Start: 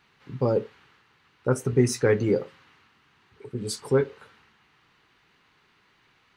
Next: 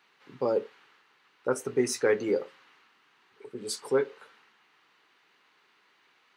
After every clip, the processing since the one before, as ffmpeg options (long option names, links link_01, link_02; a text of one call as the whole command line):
ffmpeg -i in.wav -af "highpass=340,volume=-1.5dB" out.wav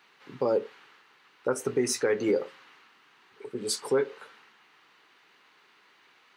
ffmpeg -i in.wav -af "alimiter=limit=-21dB:level=0:latency=1:release=132,volume=4.5dB" out.wav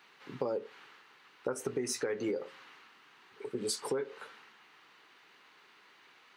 ffmpeg -i in.wav -af "acompressor=threshold=-31dB:ratio=6" out.wav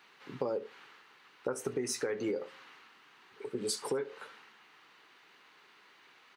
ffmpeg -i in.wav -af "aecho=1:1:73:0.0944" out.wav